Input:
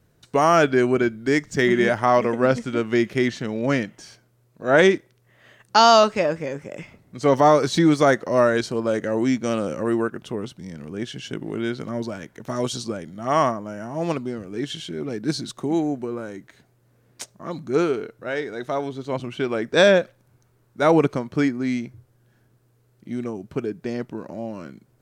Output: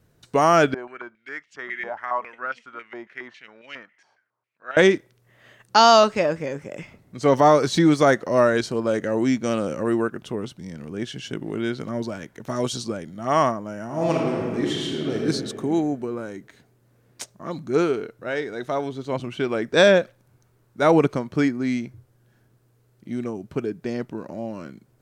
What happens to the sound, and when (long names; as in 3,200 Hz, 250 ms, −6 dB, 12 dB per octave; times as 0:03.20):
0:00.74–0:04.77: band-pass on a step sequencer 7.3 Hz 860–2,800 Hz
0:13.85–0:15.25: thrown reverb, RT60 2 s, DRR −2 dB